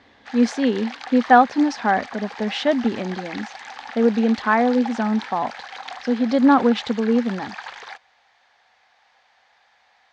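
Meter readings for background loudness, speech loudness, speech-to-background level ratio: -36.0 LUFS, -20.0 LUFS, 16.0 dB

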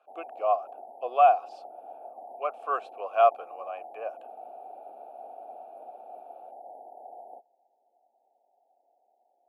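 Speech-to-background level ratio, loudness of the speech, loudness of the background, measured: 19.5 dB, -26.0 LUFS, -45.5 LUFS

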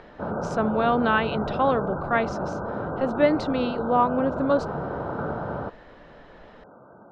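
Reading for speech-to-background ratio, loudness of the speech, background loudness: 6.5 dB, -24.5 LUFS, -31.0 LUFS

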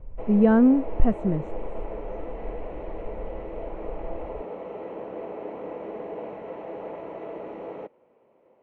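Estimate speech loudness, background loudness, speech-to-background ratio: -21.5 LUFS, -37.0 LUFS, 15.5 dB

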